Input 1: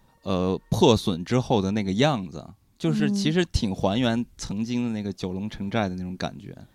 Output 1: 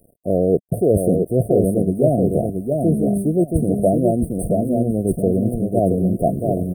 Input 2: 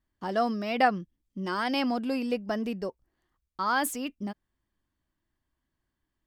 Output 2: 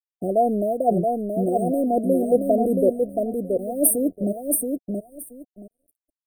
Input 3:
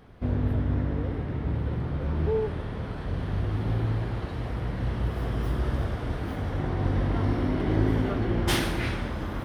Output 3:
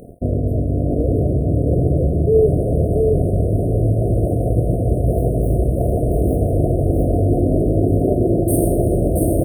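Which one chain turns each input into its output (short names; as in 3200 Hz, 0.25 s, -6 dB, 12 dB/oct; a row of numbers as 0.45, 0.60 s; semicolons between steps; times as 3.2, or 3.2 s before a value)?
reverse; compressor 8:1, threshold -32 dBFS; reverse; low shelf 150 Hz -8.5 dB; feedback echo 0.676 s, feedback 21%, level -4 dB; crossover distortion -59.5 dBFS; brick-wall FIR band-stop 730–8400 Hz; dynamic EQ 230 Hz, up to -7 dB, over -53 dBFS, Q 3.2; normalise peaks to -3 dBFS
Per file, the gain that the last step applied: +22.5, +20.0, +24.0 dB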